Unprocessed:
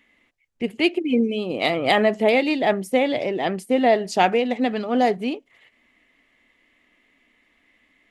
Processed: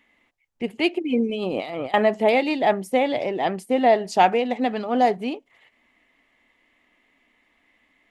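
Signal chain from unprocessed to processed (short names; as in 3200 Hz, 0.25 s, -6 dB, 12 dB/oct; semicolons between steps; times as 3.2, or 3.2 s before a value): bell 860 Hz +6 dB 0.8 oct; 1.29–1.94 negative-ratio compressor -27 dBFS, ratio -1; gain -2.5 dB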